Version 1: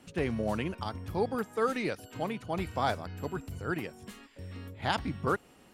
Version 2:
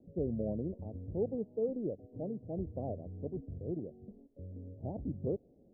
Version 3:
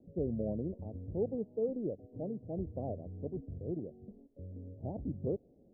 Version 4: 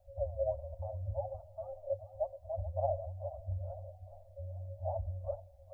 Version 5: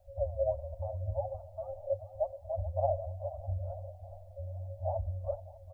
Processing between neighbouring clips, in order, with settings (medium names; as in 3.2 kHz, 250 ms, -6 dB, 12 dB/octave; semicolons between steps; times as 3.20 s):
steep low-pass 620 Hz 48 dB/octave; trim -3 dB
no audible change
flange 1.3 Hz, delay 3.8 ms, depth 5.6 ms, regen +26%; two-band feedback delay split 320 Hz, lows 268 ms, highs 429 ms, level -14.5 dB; FFT band-reject 100–530 Hz; trim +12.5 dB
feedback delay 603 ms, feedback 42%, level -20 dB; trim +3 dB